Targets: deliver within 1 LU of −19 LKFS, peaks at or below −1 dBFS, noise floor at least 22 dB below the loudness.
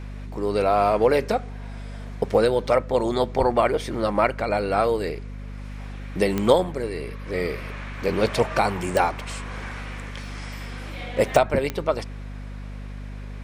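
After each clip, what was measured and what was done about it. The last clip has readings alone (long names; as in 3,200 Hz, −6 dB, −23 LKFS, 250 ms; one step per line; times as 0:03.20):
number of clicks 4; mains hum 50 Hz; hum harmonics up to 250 Hz; level of the hum −32 dBFS; integrated loudness −23.5 LKFS; sample peak −2.5 dBFS; target loudness −19.0 LKFS
→ click removal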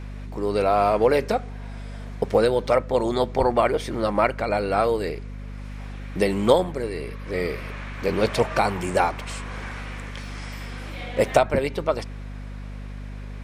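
number of clicks 0; mains hum 50 Hz; hum harmonics up to 250 Hz; level of the hum −32 dBFS
→ hum removal 50 Hz, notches 5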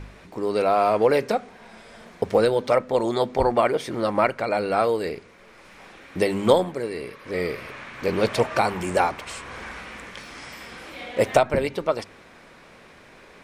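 mains hum none found; integrated loudness −23.0 LKFS; sample peak −3.0 dBFS; target loudness −19.0 LKFS
→ level +4 dB
brickwall limiter −1 dBFS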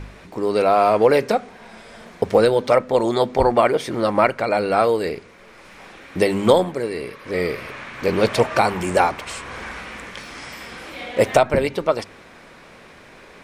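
integrated loudness −19.5 LKFS; sample peak −1.0 dBFS; background noise floor −46 dBFS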